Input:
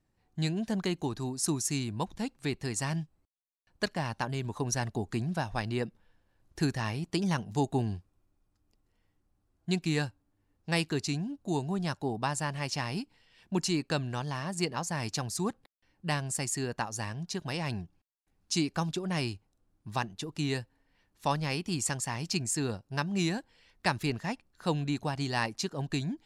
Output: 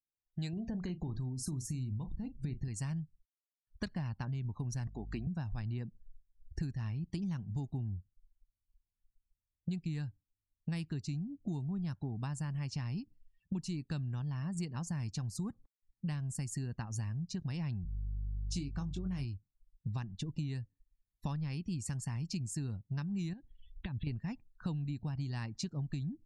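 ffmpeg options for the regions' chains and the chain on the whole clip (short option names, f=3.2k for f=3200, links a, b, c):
-filter_complex "[0:a]asettb=1/sr,asplit=3[a][b][c];[a]atrim=end=0.534[d];[b]atrim=start=0.53:end=2.68,asetpts=PTS-STARTPTS,afade=t=in:d=0.004:c=qsin,afade=t=out:st=2.146:d=0.004:c=qsin,lowshelf=f=480:g=9,acompressor=threshold=-30dB:ratio=3:attack=3.2:release=140:knee=1:detection=peak,asplit=2[e][f];[f]adelay=39,volume=-10.5dB[g];[e][g]amix=inputs=2:normalize=0,atrim=end_sample=94815[h];[c]atrim=start=2.676[i];[d][h]acrossfade=d=0.004:c1=hsin:c2=qsin[j];[j][i]acrossfade=d=0.004:c1=qsin:c2=hsin,asettb=1/sr,asplit=3[k][l][m];[k]atrim=end=4.874[n];[l]atrim=start=4.87:end=5.27,asetpts=PTS-STARTPTS,afade=t=in:d=0.004:c=qsin,afade=t=out:st=0.396:d=0.004:c=qsin,highpass=310,lowpass=7.6k,aeval=exprs='val(0)+0.00224*(sin(2*PI*50*n/s)+sin(2*PI*2*50*n/s)/2+sin(2*PI*3*50*n/s)/3+sin(2*PI*4*50*n/s)/4+sin(2*PI*5*50*n/s)/5)':c=same[o];[m]atrim=start=5.266[p];[n][o]acrossfade=d=0.004:c1=hsin:c2=qsin[q];[q][p]acrossfade=d=0.004:c1=qsin:c2=hsin,asettb=1/sr,asplit=3[r][s][t];[r]atrim=end=17.834[u];[s]atrim=start=17.83:end=19.25,asetpts=PTS-STARTPTS,afade=t=in:d=0.004:c=qsin,afade=t=out:st=1.416:d=0.004:c=qsin,aeval=exprs='val(0)+0.00501*(sin(2*PI*50*n/s)+sin(2*PI*2*50*n/s)/2+sin(2*PI*3*50*n/s)/3+sin(2*PI*4*50*n/s)/4+sin(2*PI*5*50*n/s)/5)':c=same,asplit=2[v][w];[w]adelay=22,volume=-7dB[x];[v][x]amix=inputs=2:normalize=0,atrim=end_sample=62622[y];[t]atrim=start=19.246[z];[u][y]acrossfade=d=0.004:c1=hsin:c2=qsin[aa];[aa][z]acrossfade=d=0.004:c1=qsin:c2=hsin,asettb=1/sr,asplit=3[ab][ac][ad];[ab]atrim=end=23.334[ae];[ac]atrim=start=23.33:end=24.07,asetpts=PTS-STARTPTS,afade=t=in:d=0.004:c=qsin,afade=t=out:st=0.736:d=0.004:c=qsin,acompressor=threshold=-42dB:ratio=16:attack=3.2:release=140:knee=1:detection=peak,lowpass=f=3.4k:t=q:w=4.2,tiltshelf=f=1.1k:g=4[af];[ad]atrim=start=24.066[ag];[ae][af]acrossfade=d=0.004:c1=hsin:c2=qsin[ah];[ah][ag]acrossfade=d=0.004:c1=qsin:c2=hsin,afftdn=nr=34:nf=-48,asubboost=boost=8.5:cutoff=170,acompressor=threshold=-34dB:ratio=10,volume=-1dB"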